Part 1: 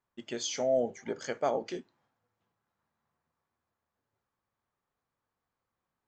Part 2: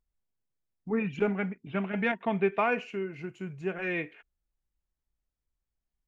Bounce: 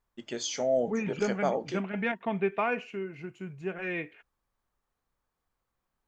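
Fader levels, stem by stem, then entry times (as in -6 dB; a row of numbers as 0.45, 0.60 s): +1.0, -2.0 dB; 0.00, 0.00 s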